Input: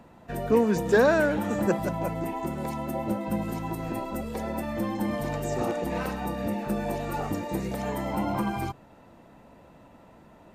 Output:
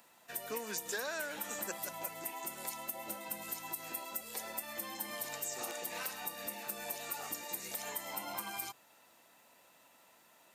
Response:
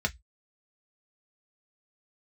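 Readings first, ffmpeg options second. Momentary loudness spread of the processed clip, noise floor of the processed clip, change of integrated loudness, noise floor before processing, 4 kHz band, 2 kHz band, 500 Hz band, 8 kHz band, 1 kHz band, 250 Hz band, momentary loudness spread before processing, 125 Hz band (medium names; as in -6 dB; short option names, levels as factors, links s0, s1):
3 LU, -65 dBFS, -11.5 dB, -53 dBFS, -0.5 dB, -9.5 dB, -19.0 dB, +4.5 dB, -12.5 dB, -24.0 dB, 10 LU, -27.5 dB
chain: -af "aderivative,acompressor=threshold=0.00708:ratio=6,volume=2.37"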